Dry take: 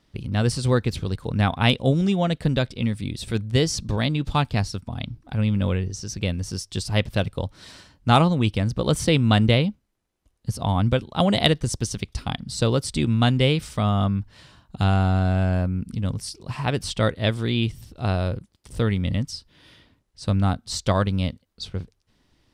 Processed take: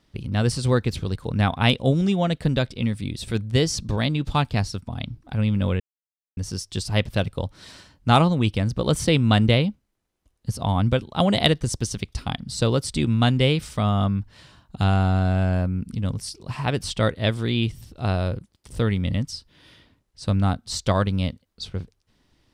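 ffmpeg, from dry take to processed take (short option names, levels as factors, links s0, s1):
-filter_complex "[0:a]asplit=3[s0][s1][s2];[s0]atrim=end=5.8,asetpts=PTS-STARTPTS,afade=t=out:st=5.796:d=0.004:c=hsin[s3];[s1]atrim=start=5.8:end=6.37,asetpts=PTS-STARTPTS,volume=0[s4];[s2]atrim=start=6.37,asetpts=PTS-STARTPTS,afade=t=in:d=0.004:c=hsin[s5];[s3][s4][s5]concat=n=3:v=0:a=1"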